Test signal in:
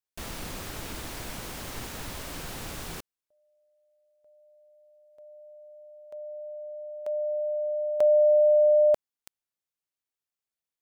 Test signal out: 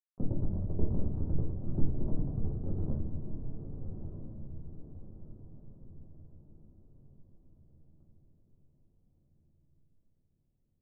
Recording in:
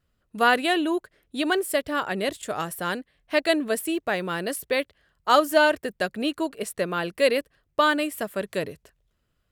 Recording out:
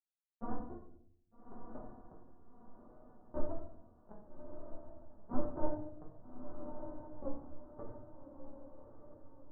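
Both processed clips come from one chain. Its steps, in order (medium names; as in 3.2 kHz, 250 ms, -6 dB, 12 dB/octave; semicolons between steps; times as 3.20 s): CVSD coder 64 kbps; FFT filter 100 Hz 0 dB, 150 Hz -14 dB, 420 Hz -27 dB; in parallel at +1 dB: compression 10:1, threshold -53 dBFS; on the sum: fuzz box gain 30 dB, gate -36 dBFS; flange 0.49 Hz, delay 5.7 ms, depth 8.6 ms, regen +26%; wavefolder -33.5 dBFS; Gaussian low-pass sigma 11 samples; on a send: echo that smears into a reverb 1224 ms, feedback 43%, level -7.5 dB; on the sum: simulated room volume 120 m³, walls mixed, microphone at 1.1 m; trim +9 dB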